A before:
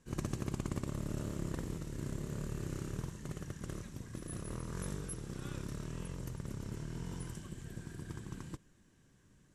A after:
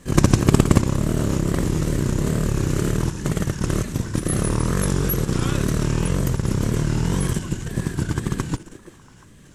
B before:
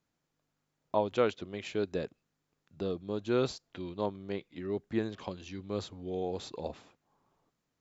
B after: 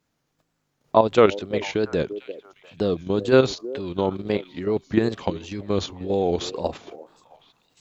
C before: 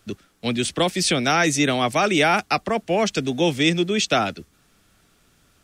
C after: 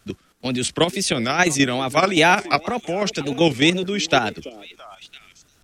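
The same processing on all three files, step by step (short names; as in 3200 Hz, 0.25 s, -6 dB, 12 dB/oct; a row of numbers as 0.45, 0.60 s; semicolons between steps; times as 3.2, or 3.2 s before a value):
delay with a stepping band-pass 0.34 s, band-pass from 400 Hz, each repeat 1.4 oct, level -12 dB; level quantiser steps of 9 dB; wow and flutter 120 cents; normalise peaks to -1.5 dBFS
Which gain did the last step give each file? +24.5, +15.0, +4.5 dB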